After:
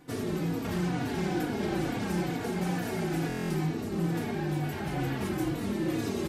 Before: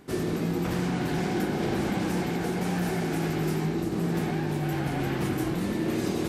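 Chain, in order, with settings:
buffer that repeats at 0:03.27, samples 1,024, times 9
barber-pole flanger 3.5 ms −2.2 Hz

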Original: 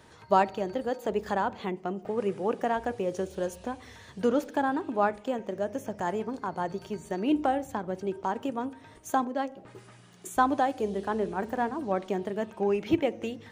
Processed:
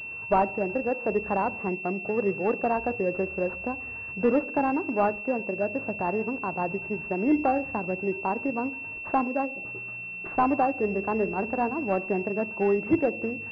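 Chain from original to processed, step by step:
pitch vibrato 0.36 Hz 7.5 cents
sine wavefolder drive 4 dB, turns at −8.5 dBFS
switching amplifier with a slow clock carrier 2,700 Hz
level −4.5 dB

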